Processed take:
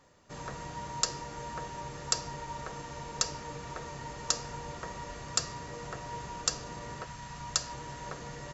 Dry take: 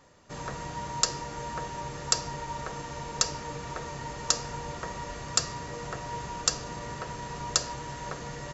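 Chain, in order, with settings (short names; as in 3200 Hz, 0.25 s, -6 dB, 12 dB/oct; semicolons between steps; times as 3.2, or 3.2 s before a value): 7.04–7.71 bell 420 Hz -14.5 dB -> -6 dB 1.1 oct; gain -4 dB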